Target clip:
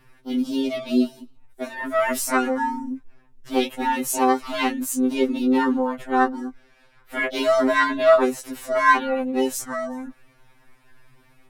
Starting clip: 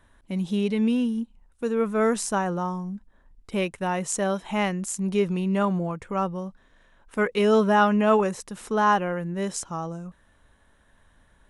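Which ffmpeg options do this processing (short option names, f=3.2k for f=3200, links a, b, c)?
-filter_complex "[0:a]acontrast=64,asplit=3[a][b][c];[b]asetrate=58866,aresample=44100,atempo=0.749154,volume=-3dB[d];[c]asetrate=66075,aresample=44100,atempo=0.66742,volume=-5dB[e];[a][d][e]amix=inputs=3:normalize=0,afftfilt=real='re*2.45*eq(mod(b,6),0)':imag='im*2.45*eq(mod(b,6),0)':win_size=2048:overlap=0.75,volume=-3dB"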